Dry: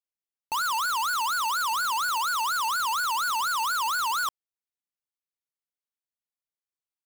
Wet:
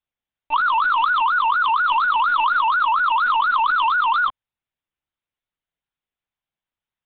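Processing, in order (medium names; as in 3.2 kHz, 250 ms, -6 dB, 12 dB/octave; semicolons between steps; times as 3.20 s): LPC vocoder at 8 kHz pitch kept; trim +9 dB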